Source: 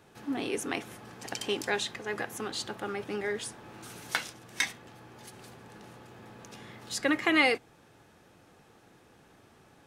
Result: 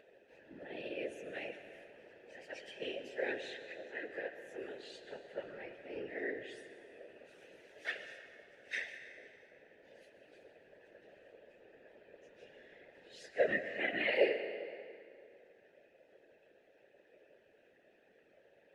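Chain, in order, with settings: upward compressor, threshold -50 dBFS; vowel filter e; plain phase-vocoder stretch 1.9×; whisperiser; on a send: reverb RT60 2.6 s, pre-delay 0.104 s, DRR 9.5 dB; on the sum: gain +4 dB

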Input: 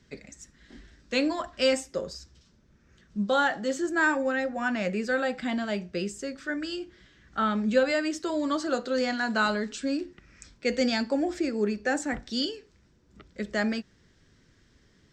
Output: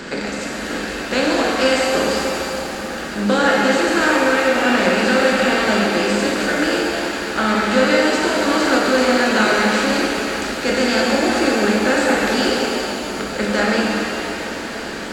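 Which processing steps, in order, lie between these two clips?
per-bin compression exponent 0.4; shimmer reverb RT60 3.1 s, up +7 st, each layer -8 dB, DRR -2.5 dB

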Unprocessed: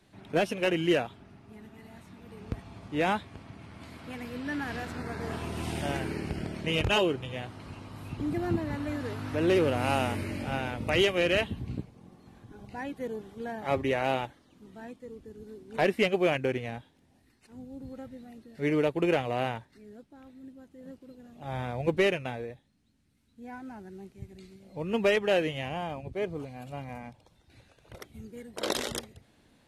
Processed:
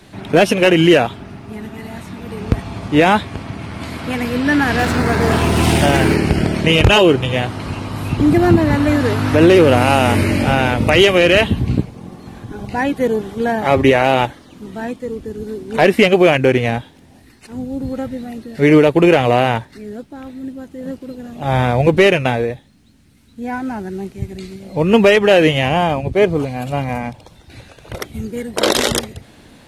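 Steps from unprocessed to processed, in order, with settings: 4.79–6.16 G.711 law mismatch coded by mu; maximiser +20 dB; gain -1 dB

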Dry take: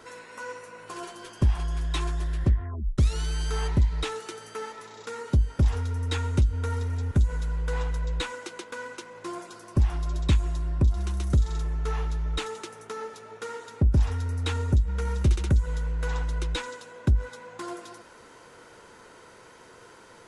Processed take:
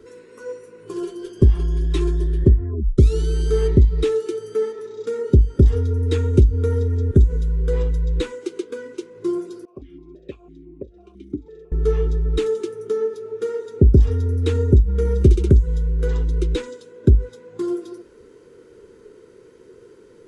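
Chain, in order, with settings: bell 400 Hz +4 dB 0.46 oct; spectral noise reduction 7 dB; resonant low shelf 560 Hz +9 dB, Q 3; 9.65–11.72 vowel sequencer 6 Hz; gain -1 dB

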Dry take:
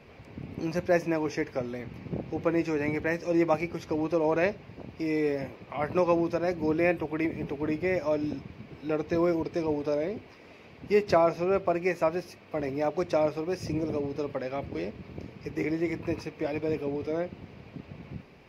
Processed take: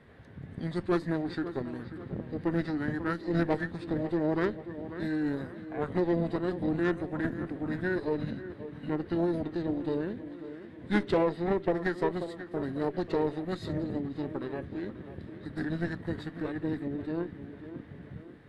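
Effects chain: tape echo 0.54 s, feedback 53%, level -10.5 dB, low-pass 3200 Hz; added harmonics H 6 -21 dB, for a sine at -10.5 dBFS; formant shift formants -5 st; gain -3.5 dB

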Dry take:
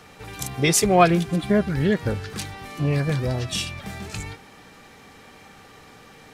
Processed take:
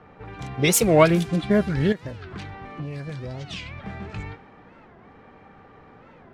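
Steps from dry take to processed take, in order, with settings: low-pass opened by the level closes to 1300 Hz, open at -15.5 dBFS; 1.92–3.84 compressor 6:1, threshold -31 dBFS, peak gain reduction 12.5 dB; record warp 45 rpm, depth 250 cents

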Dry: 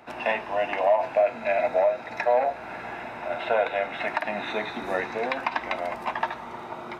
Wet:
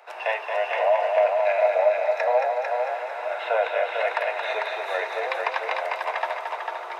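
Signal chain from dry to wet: steep high-pass 440 Hz 48 dB/oct; on a send: multi-head echo 0.224 s, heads first and second, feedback 44%, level -6 dB

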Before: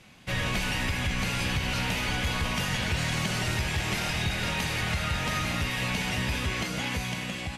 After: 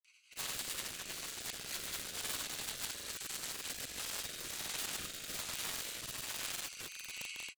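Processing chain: Wiener smoothing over 25 samples; Bessel high-pass 2900 Hz, order 8; bell 8600 Hz +14 dB 1.4 oct; compressor 20:1, threshold -40 dBFS, peak gain reduction 11 dB; wrapped overs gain 39.5 dB; rotary speaker horn 7.5 Hz, later 1.2 Hz, at 3.15; grains, pitch spread up and down by 0 st; gain +12 dB

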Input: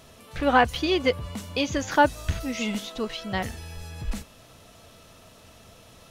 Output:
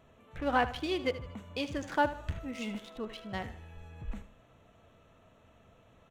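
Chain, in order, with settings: Wiener smoothing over 9 samples; feedback echo 77 ms, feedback 39%, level -14 dB; gain -9 dB

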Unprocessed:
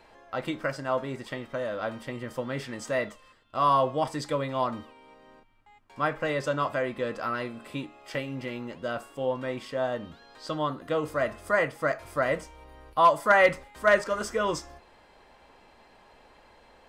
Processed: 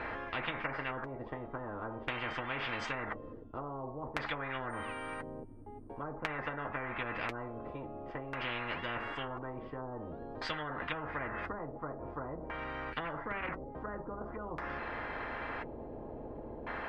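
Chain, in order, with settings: treble ducked by the level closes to 650 Hz, closed at -24.5 dBFS; 4.69–6.01 whine 8800 Hz -49 dBFS; LFO low-pass square 0.48 Hz 380–1700 Hz; notch comb 190 Hz; spectral compressor 10:1; gain -2.5 dB

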